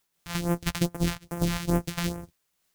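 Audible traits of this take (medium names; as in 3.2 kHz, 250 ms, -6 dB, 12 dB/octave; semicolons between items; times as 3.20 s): a buzz of ramps at a fixed pitch in blocks of 256 samples; phasing stages 2, 2.4 Hz, lowest notch 350–3900 Hz; a quantiser's noise floor 12-bit, dither triangular; random flutter of the level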